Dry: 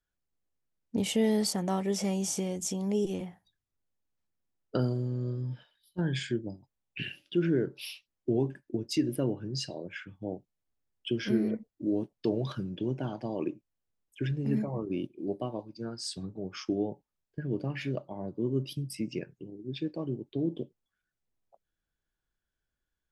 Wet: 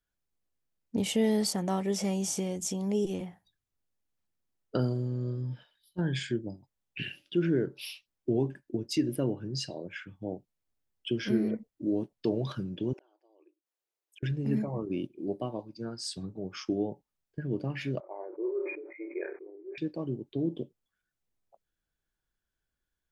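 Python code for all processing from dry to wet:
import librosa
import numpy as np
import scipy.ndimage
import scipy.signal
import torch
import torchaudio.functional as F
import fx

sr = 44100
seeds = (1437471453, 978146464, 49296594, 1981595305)

y = fx.chain(x, sr, fx.brickwall_highpass(low_hz=300.0),
    fx.gate_flip(shuts_db=-40.0, range_db=-29), at=(12.93, 14.23))
y = fx.chain(y, sr, fx.brickwall_bandpass(low_hz=320.0, high_hz=2500.0),
    fx.doubler(ms=30.0, db=-12),
    fx.sustainer(db_per_s=53.0), at=(18.0, 19.78))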